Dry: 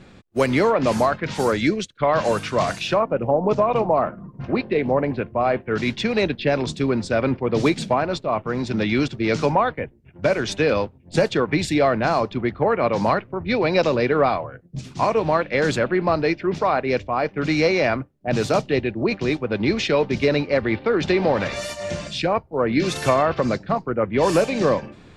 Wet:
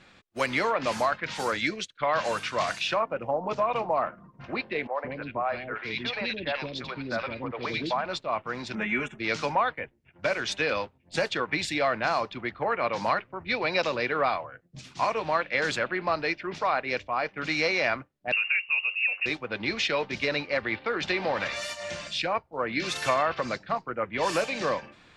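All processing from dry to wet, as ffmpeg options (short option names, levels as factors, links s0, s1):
-filter_complex "[0:a]asettb=1/sr,asplit=3[s0][s1][s2];[s0]atrim=end=4.874[s3];[s1]atrim=start=4.87:end=8.06,asetpts=PTS-STARTPTS,afade=t=in:d=0.004:c=qsin,afade=t=out:st=3.186:d=0.004:c=qsin,lowpass=f=4800:w=0.5412,lowpass=f=4800:w=1.3066,acrossover=split=450|2000[s4][s5][s6];[s6]adelay=80[s7];[s4]adelay=170[s8];[s8][s5][s7]amix=inputs=3:normalize=0,atrim=end_sample=140679[s9];[s2]atrim=start=8.056[s10];[s3][s9]acrossfade=d=0.004:c1=hsin:c2=qsin[s11];[s11][s10]acrossfade=d=0.004:c1=qsin:c2=hsin,asettb=1/sr,asplit=3[s12][s13][s14];[s12]atrim=end=8.754[s15];[s13]atrim=start=8.75:end=9.19,asetpts=PTS-STARTPTS,afade=t=in:d=0.004:c=qsin,afade=t=out:st=0.436:d=0.004:c=qsin,asuperstop=centerf=4500:order=4:qfactor=0.89,aecho=1:1:4.8:0.73,atrim=end_sample=19404[s16];[s14]atrim=start=9.186[s17];[s15][s16]acrossfade=d=0.004:c1=hsin:c2=qsin[s18];[s18][s17]acrossfade=d=0.004:c1=qsin:c2=hsin,asettb=1/sr,asplit=3[s19][s20][s21];[s19]atrim=end=18.324[s22];[s20]atrim=start=18.32:end=19.26,asetpts=PTS-STARTPTS,afade=t=in:d=0.004:c=qsin,afade=t=out:st=0.936:d=0.004:c=qsin,lowpass=f=2500:t=q:w=0.5098,lowpass=f=2500:t=q:w=0.6013,lowpass=f=2500:t=q:w=0.9,lowpass=f=2500:t=q:w=2.563,afreqshift=-2900,acrossover=split=190|2100[s23][s24][s25];[s23]acompressor=threshold=0.00112:ratio=4[s26];[s24]acompressor=threshold=0.0141:ratio=4[s27];[s25]acompressor=threshold=0.0708:ratio=4[s28];[s26][s27][s28]amix=inputs=3:normalize=0,bandreject=f=178.6:t=h:w=4,bandreject=f=357.2:t=h:w=4,bandreject=f=535.8:t=h:w=4,bandreject=f=714.4:t=h:w=4,bandreject=f=893:t=h:w=4,bandreject=f=1071.6:t=h:w=4,bandreject=f=1250.2:t=h:w=4[s29];[s21]atrim=start=19.256[s30];[s22][s29]acrossfade=d=0.004:c1=hsin:c2=qsin[s31];[s31][s30]acrossfade=d=0.004:c1=qsin:c2=hsin,lowpass=f=3900:p=1,tiltshelf=f=700:g=-8.5,bandreject=f=410:w=12,volume=0.447"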